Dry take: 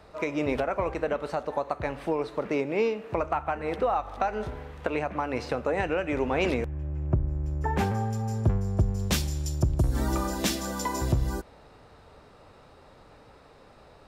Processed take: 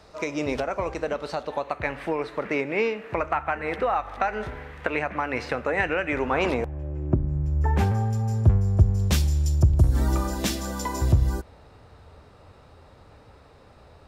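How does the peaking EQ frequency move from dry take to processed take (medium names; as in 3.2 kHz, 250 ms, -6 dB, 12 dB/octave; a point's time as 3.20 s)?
peaking EQ +9.5 dB 1.1 oct
1.12 s 5.8 kHz
1.93 s 1.9 kHz
6.12 s 1.9 kHz
6.97 s 430 Hz
7.59 s 81 Hz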